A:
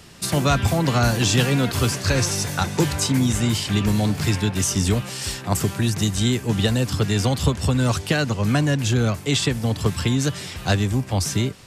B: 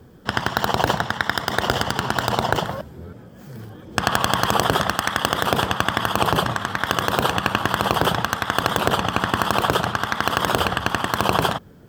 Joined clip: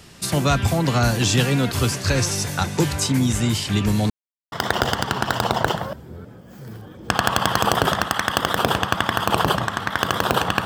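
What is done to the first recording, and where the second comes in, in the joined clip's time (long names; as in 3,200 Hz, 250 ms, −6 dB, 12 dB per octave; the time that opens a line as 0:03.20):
A
0:04.10–0:04.52: silence
0:04.52: continue with B from 0:01.40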